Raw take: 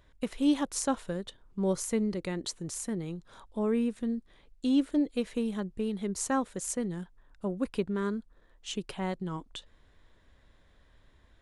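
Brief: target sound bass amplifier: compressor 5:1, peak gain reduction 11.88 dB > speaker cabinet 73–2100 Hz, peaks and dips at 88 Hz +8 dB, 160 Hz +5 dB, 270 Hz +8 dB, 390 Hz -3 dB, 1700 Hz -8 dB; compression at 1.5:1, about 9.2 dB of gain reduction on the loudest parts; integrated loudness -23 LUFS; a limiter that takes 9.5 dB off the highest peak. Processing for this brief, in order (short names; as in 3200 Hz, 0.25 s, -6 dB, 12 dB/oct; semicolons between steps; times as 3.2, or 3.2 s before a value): compressor 1.5:1, threshold -48 dBFS; limiter -32 dBFS; compressor 5:1, threshold -48 dBFS; speaker cabinet 73–2100 Hz, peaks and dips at 88 Hz +8 dB, 160 Hz +5 dB, 270 Hz +8 dB, 390 Hz -3 dB, 1700 Hz -8 dB; gain +26 dB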